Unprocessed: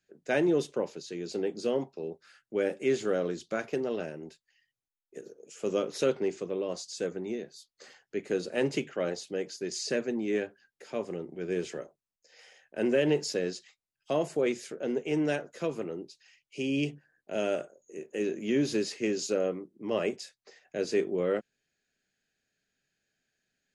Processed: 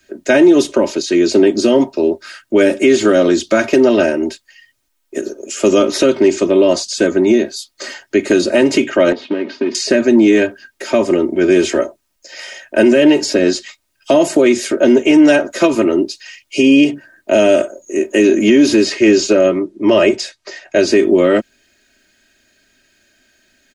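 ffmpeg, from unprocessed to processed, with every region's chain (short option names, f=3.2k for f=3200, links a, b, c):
-filter_complex "[0:a]asettb=1/sr,asplit=3[a][b][c];[a]atrim=end=9.124[d];[b]atrim=start=9.12:end=9.75,asetpts=PTS-STARTPTS,afade=t=in:d=0.004:c=qsin,afade=t=out:st=0.626:d=0.004:c=qsin,acompressor=threshold=-41dB:ratio=6:attack=3.2:release=140:knee=1:detection=peak,acrusher=bits=3:mode=log:mix=0:aa=0.000001,highpass=130,equalizer=f=250:t=q:w=4:g=10,equalizer=f=440:t=q:w=4:g=4,equalizer=f=920:t=q:w=4:g=4,lowpass=f=3.1k:w=0.5412,lowpass=f=3.1k:w=1.3066[e];[c]atrim=start=9.746[f];[d][e]acrossfade=d=0.004:c1=hsin:c2=qsin[g];[g][f]acrossfade=d=0.004:c1=qsin:c2=hsin,asettb=1/sr,asplit=3[h][i][j];[h]atrim=end=18.854[k];[i]atrim=start=18.85:end=20.88,asetpts=PTS-STARTPTS,afade=t=in:d=0.004:c=qsin,afade=t=out:st=2.026:d=0.004:c=qsin,lowpass=7.6k,equalizer=f=250:w=6.1:g=-11.5[l];[j]atrim=start=20.876[m];[k][l]acrossfade=d=0.004:c1=hsin:c2=qsin[n];[n][m]acrossfade=d=0.004:c1=qsin:c2=hsin,acrossover=split=260|2700[o][p][q];[o]acompressor=threshold=-38dB:ratio=4[r];[p]acompressor=threshold=-32dB:ratio=4[s];[q]acompressor=threshold=-47dB:ratio=4[t];[r][s][t]amix=inputs=3:normalize=0,aecho=1:1:3.2:0.81,alimiter=level_in=23.5dB:limit=-1dB:release=50:level=0:latency=1,volume=-1dB"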